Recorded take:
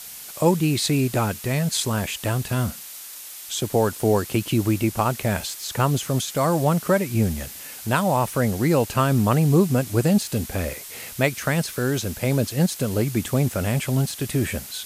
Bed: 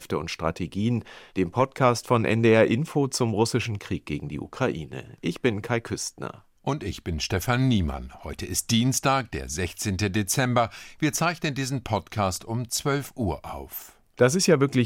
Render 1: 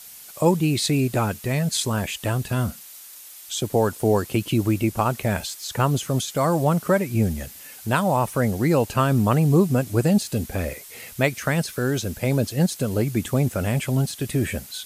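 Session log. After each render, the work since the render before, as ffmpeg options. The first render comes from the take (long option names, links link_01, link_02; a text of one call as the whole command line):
ffmpeg -i in.wav -af "afftdn=noise_reduction=6:noise_floor=-39" out.wav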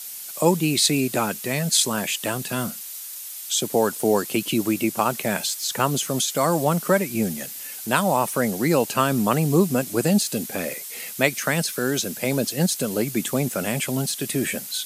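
ffmpeg -i in.wav -af "highpass=frequency=160:width=0.5412,highpass=frequency=160:width=1.3066,highshelf=frequency=2700:gain=7.5" out.wav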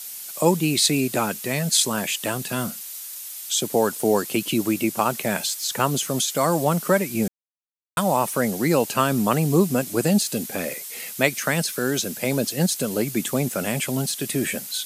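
ffmpeg -i in.wav -filter_complex "[0:a]asplit=3[link_01][link_02][link_03];[link_01]atrim=end=7.28,asetpts=PTS-STARTPTS,afade=type=out:start_time=7.276:duration=0.004:curve=hsin[link_04];[link_02]atrim=start=7.28:end=7.97,asetpts=PTS-STARTPTS,volume=0[link_05];[link_03]atrim=start=7.97,asetpts=PTS-STARTPTS,afade=type=in:duration=0.004:curve=hsin[link_06];[link_04][link_05][link_06]concat=n=3:v=0:a=1" out.wav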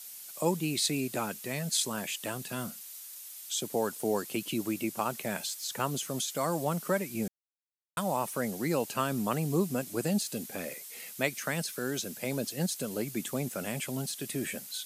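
ffmpeg -i in.wav -af "volume=-10dB" out.wav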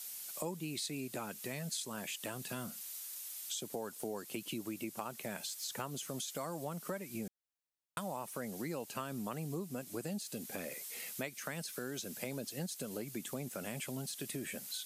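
ffmpeg -i in.wav -af "acompressor=threshold=-39dB:ratio=4" out.wav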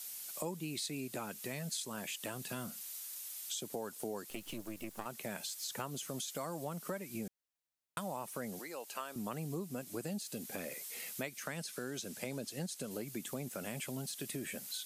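ffmpeg -i in.wav -filter_complex "[0:a]asettb=1/sr,asplit=3[link_01][link_02][link_03];[link_01]atrim=end=4.304[link_04];[link_02]atrim=start=4.3:end=5.06,asetpts=PTS-STARTPTS,afade=type=in:duration=0.004:curve=qsin,afade=type=out:start_time=0.756:duration=0.004:curve=qsin,aeval=exprs='if(lt(val(0),0),0.251*val(0),val(0))':channel_layout=same[link_05];[link_03]atrim=start=5.056[link_06];[link_04][link_05]acrossfade=duration=0.004:curve1=hsin:curve2=qsin[link_07];[link_07][link_06]acrossfade=duration=0.004:curve1=qsin:curve2=hsin,asettb=1/sr,asplit=3[link_08][link_09][link_10];[link_08]atrim=end=8.594[link_11];[link_09]atrim=start=8.59:end=9.16,asetpts=PTS-STARTPTS,afade=type=in:duration=0.004:curve=qsin,afade=type=out:start_time=0.566:duration=0.004:curve=qsin,highpass=510[link_12];[link_10]atrim=start=9.156[link_13];[link_11][link_12]acrossfade=duration=0.004:curve1=hsin:curve2=qsin[link_14];[link_14][link_13]acrossfade=duration=0.004:curve1=qsin:curve2=hsin,asettb=1/sr,asplit=3[link_15][link_16][link_17];[link_15]atrim=end=11.444[link_18];[link_16]atrim=start=11.44:end=12.91,asetpts=PTS-STARTPTS,afade=type=in:duration=0.004:curve=qsin,afade=type=out:start_time=1.466:duration=0.004:curve=qsin,lowpass=12000[link_19];[link_17]atrim=start=12.906[link_20];[link_18][link_19]acrossfade=duration=0.004:curve1=hsin:curve2=qsin[link_21];[link_21][link_20]acrossfade=duration=0.004:curve1=qsin:curve2=hsin" out.wav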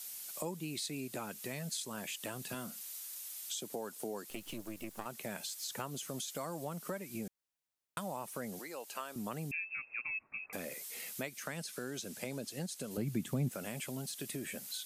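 ffmpeg -i in.wav -filter_complex "[0:a]asettb=1/sr,asplit=3[link_01][link_02][link_03];[link_01]atrim=end=2.544[link_04];[link_02]atrim=start=2.54:end=4.3,asetpts=PTS-STARTPTS,afade=type=in:duration=0.004:curve=qsin,afade=type=out:start_time=1.756:duration=0.004:curve=qsin,highpass=140[link_05];[link_03]atrim=start=4.296[link_06];[link_04][link_05]acrossfade=duration=0.004:curve1=hsin:curve2=qsin[link_07];[link_07][link_06]acrossfade=duration=0.004:curve1=qsin:curve2=hsin,asettb=1/sr,asplit=3[link_08][link_09][link_10];[link_08]atrim=end=9.514[link_11];[link_09]atrim=start=9.51:end=10.53,asetpts=PTS-STARTPTS,afade=type=in:duration=0.004:curve=qsin,afade=type=out:start_time=1.016:duration=0.004:curve=qsin,lowpass=frequency=2400:width_type=q:width=0.5098,lowpass=frequency=2400:width_type=q:width=0.6013,lowpass=frequency=2400:width_type=q:width=0.9,lowpass=frequency=2400:width_type=q:width=2.563,afreqshift=-2800[link_12];[link_10]atrim=start=10.526[link_13];[link_11][link_12]acrossfade=duration=0.004:curve1=hsin:curve2=qsin[link_14];[link_14][link_13]acrossfade=duration=0.004:curve1=qsin:curve2=hsin,asettb=1/sr,asplit=3[link_15][link_16][link_17];[link_15]atrim=end=12.974[link_18];[link_16]atrim=start=12.97:end=13.52,asetpts=PTS-STARTPTS,afade=type=in:duration=0.004:curve=qsin,afade=type=out:start_time=0.546:duration=0.004:curve=qsin,bass=frequency=250:gain=14,treble=frequency=4000:gain=-4[link_19];[link_17]atrim=start=13.516[link_20];[link_18][link_19]acrossfade=duration=0.004:curve1=hsin:curve2=qsin[link_21];[link_21][link_20]acrossfade=duration=0.004:curve1=qsin:curve2=hsin" out.wav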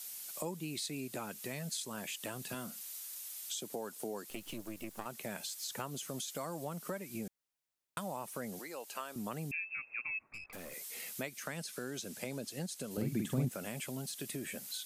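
ffmpeg -i in.wav -filter_complex "[0:a]asplit=3[link_01][link_02][link_03];[link_01]afade=type=out:start_time=10.32:duration=0.02[link_04];[link_02]aeval=exprs='(tanh(126*val(0)+0.6)-tanh(0.6))/126':channel_layout=same,afade=type=in:start_time=10.32:duration=0.02,afade=type=out:start_time=10.72:duration=0.02[link_05];[link_03]afade=type=in:start_time=10.72:duration=0.02[link_06];[link_04][link_05][link_06]amix=inputs=3:normalize=0,asettb=1/sr,asplit=3[link_07][link_08][link_09];[link_07]atrim=end=12.934[link_10];[link_08]atrim=start=12.93:end=13.45,asetpts=PTS-STARTPTS,afade=type=in:duration=0.004:curve=qsin,afade=type=out:start_time=0.516:duration=0.004:curve=qsin,asplit=2[link_11][link_12];[link_12]adelay=47,volume=-4dB[link_13];[link_11][link_13]amix=inputs=2:normalize=0,atrim=end_sample=22932[link_14];[link_09]atrim=start=13.446[link_15];[link_10][link_14]acrossfade=duration=0.004:curve1=hsin:curve2=qsin[link_16];[link_16][link_15]acrossfade=duration=0.004:curve1=qsin:curve2=hsin" out.wav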